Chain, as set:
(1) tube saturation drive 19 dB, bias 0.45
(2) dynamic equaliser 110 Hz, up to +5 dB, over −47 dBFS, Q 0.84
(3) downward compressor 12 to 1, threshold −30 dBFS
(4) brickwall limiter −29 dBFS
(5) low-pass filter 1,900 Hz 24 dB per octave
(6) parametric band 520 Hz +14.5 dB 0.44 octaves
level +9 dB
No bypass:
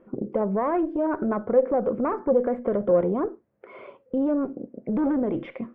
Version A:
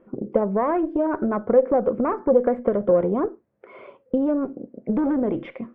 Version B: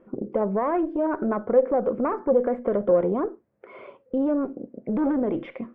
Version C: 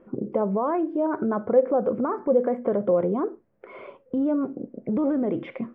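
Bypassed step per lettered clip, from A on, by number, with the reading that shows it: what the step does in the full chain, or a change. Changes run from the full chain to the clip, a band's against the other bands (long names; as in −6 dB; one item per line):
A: 4, change in integrated loudness +2.5 LU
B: 2, 125 Hz band −2.0 dB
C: 1, change in momentary loudness spread +2 LU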